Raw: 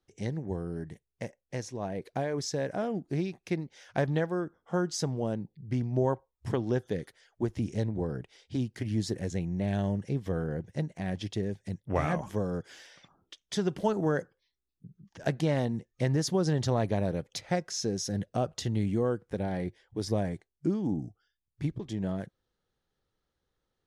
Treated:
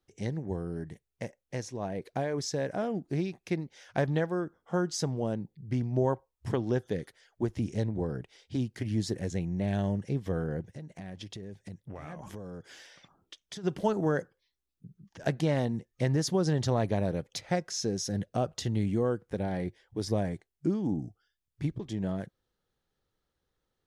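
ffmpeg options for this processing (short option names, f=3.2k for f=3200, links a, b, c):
-filter_complex "[0:a]asplit=3[a][b][c];[a]afade=t=out:st=10.69:d=0.02[d];[b]acompressor=threshold=-38dB:ratio=10:attack=3.2:release=140:knee=1:detection=peak,afade=t=in:st=10.69:d=0.02,afade=t=out:st=13.63:d=0.02[e];[c]afade=t=in:st=13.63:d=0.02[f];[d][e][f]amix=inputs=3:normalize=0"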